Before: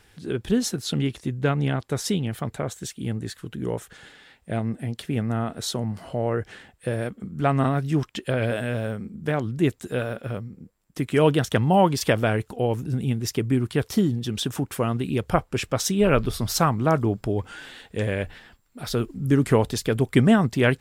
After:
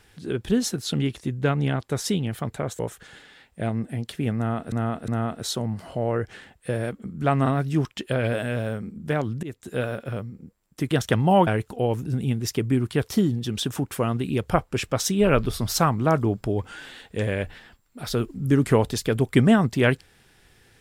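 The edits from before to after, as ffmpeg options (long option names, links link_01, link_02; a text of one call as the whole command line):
ffmpeg -i in.wav -filter_complex "[0:a]asplit=7[link_01][link_02][link_03][link_04][link_05][link_06][link_07];[link_01]atrim=end=2.792[link_08];[link_02]atrim=start=3.688:end=5.622[link_09];[link_03]atrim=start=5.258:end=5.622[link_10];[link_04]atrim=start=5.258:end=9.61,asetpts=PTS-STARTPTS,afade=type=out:start_time=4.348:duration=0.004:curve=hsin:silence=0.0794328[link_11];[link_05]atrim=start=9.61:end=11.092,asetpts=PTS-STARTPTS,afade=type=in:duration=0.36:silence=0.0794328[link_12];[link_06]atrim=start=11.338:end=11.902[link_13];[link_07]atrim=start=12.268[link_14];[link_08][link_09]acrossfade=duration=0.004:curve1=hsin:curve2=hsin[link_15];[link_15][link_10]acrossfade=duration=0.004:curve1=hsin:curve2=hsin[link_16];[link_11][link_12]concat=n=2:v=0:a=1[link_17];[link_16][link_17]acrossfade=duration=0.004:curve1=hsin:curve2=hsin[link_18];[link_18][link_13]acrossfade=duration=0.004:curve1=hsin:curve2=hsin[link_19];[link_19][link_14]acrossfade=duration=0.004:curve1=hsin:curve2=hsin" out.wav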